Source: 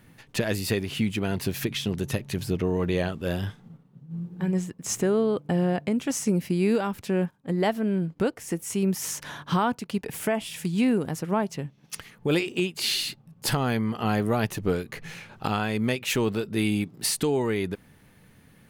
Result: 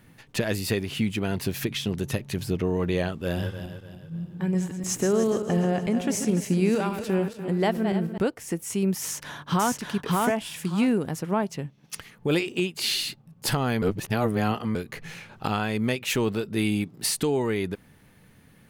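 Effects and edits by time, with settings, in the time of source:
3.22–8.18 s: backward echo that repeats 147 ms, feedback 61%, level -8 dB
9.01–9.78 s: echo throw 580 ms, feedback 20%, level -1 dB
13.82–14.75 s: reverse

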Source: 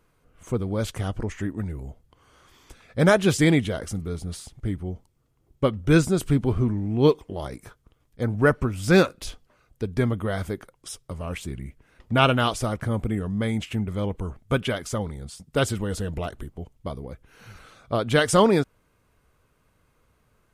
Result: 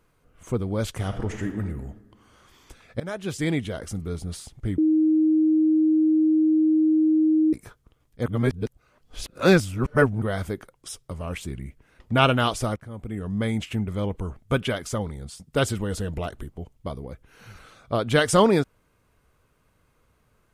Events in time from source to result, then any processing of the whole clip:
0.94–1.60 s: reverb throw, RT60 1.3 s, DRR 6 dB
3.00–4.12 s: fade in, from -22 dB
4.78–7.53 s: bleep 313 Hz -16 dBFS
8.26–10.22 s: reverse
12.76–13.34 s: fade in quadratic, from -15 dB

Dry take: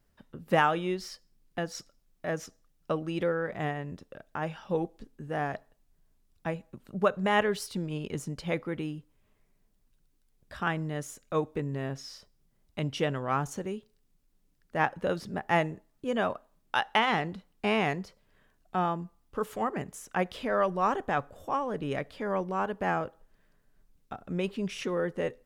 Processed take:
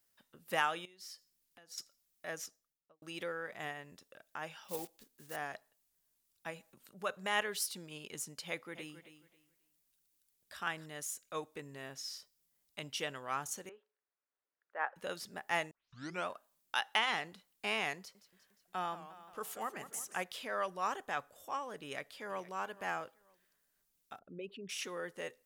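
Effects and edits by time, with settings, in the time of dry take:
0.85–1.78 s: compression, threshold -47 dBFS
2.36–3.02 s: studio fade out
4.64–5.37 s: block-companded coder 5-bit
6.50–7.11 s: transient shaper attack -4 dB, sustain +4 dB
8.48–10.86 s: feedback delay 270 ms, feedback 23%, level -12 dB
13.69–14.96 s: Chebyshev band-pass 480–1600 Hz
15.71 s: tape start 0.57 s
17.97–20.24 s: modulated delay 177 ms, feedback 60%, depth 167 cents, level -13.5 dB
21.82–22.50 s: echo throw 470 ms, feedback 25%, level -17 dB
24.19–24.69 s: resonances exaggerated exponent 2
whole clip: tilt EQ +4 dB/octave; trim -8.5 dB

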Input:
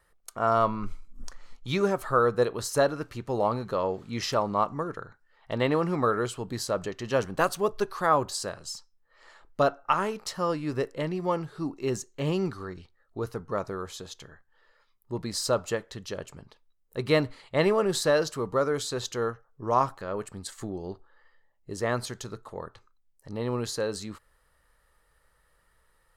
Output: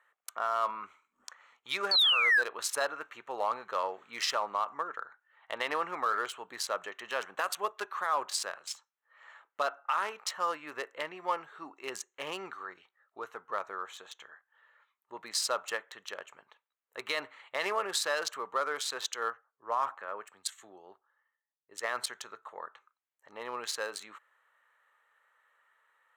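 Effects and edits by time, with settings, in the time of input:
1.91–2.42 s: painted sound fall 1.5–4.6 kHz -21 dBFS
19.12–22.06 s: three bands expanded up and down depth 70%
whole clip: local Wiener filter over 9 samples; high-pass 1.1 kHz 12 dB/octave; peak limiter -24 dBFS; trim +4.5 dB

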